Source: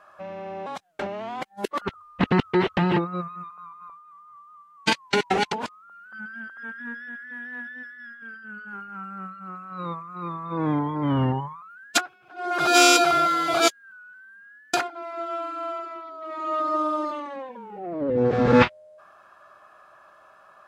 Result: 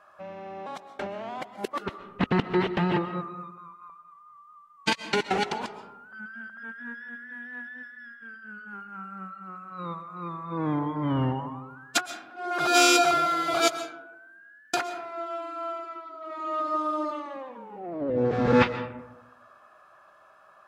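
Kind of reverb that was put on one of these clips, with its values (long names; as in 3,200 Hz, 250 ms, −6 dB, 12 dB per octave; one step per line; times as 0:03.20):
comb and all-pass reverb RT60 0.99 s, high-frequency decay 0.4×, pre-delay 90 ms, DRR 11 dB
level −3.5 dB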